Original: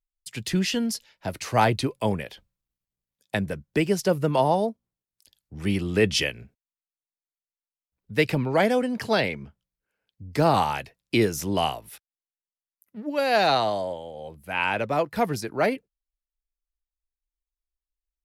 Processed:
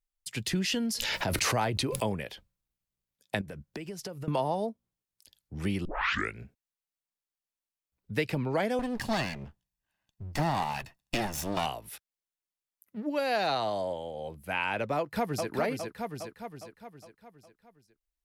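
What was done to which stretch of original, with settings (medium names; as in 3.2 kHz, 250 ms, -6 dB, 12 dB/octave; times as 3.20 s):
0.59–2.21 s: swell ahead of each attack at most 23 dB/s
3.41–4.28 s: compression 16:1, threshold -35 dBFS
5.85 s: tape start 0.53 s
8.79–11.66 s: comb filter that takes the minimum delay 1.1 ms
14.97–15.51 s: echo throw 410 ms, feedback 50%, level -5.5 dB
whole clip: compression 2.5:1, threshold -29 dBFS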